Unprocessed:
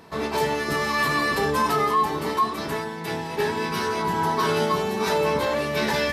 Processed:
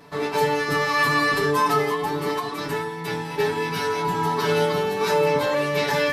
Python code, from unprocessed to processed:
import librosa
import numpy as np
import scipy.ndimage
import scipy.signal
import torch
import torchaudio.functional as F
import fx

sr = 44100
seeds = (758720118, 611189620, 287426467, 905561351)

y = x + 0.93 * np.pad(x, (int(6.9 * sr / 1000.0), 0))[:len(x)]
y = F.gain(torch.from_numpy(y), -2.5).numpy()